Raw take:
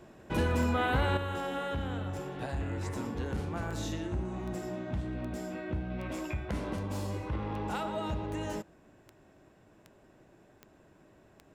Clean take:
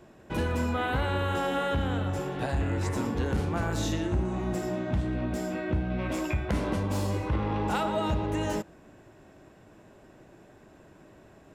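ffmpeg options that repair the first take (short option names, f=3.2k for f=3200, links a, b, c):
-af "adeclick=t=4,asetnsamples=n=441:p=0,asendcmd='1.17 volume volume 6.5dB',volume=0dB"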